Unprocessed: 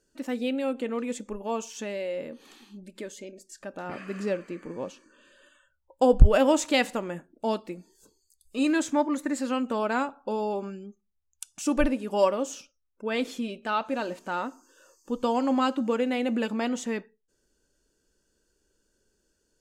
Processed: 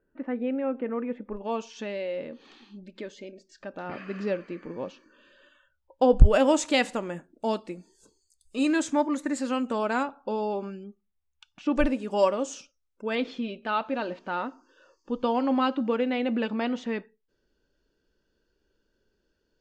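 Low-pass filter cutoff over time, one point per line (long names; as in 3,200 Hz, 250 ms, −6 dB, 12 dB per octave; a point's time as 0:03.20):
low-pass filter 24 dB per octave
2,000 Hz
from 0:01.37 5,000 Hz
from 0:06.17 9,600 Hz
from 0:10.03 5,600 Hz
from 0:10.84 3,500 Hz
from 0:11.76 8,300 Hz
from 0:13.15 4,400 Hz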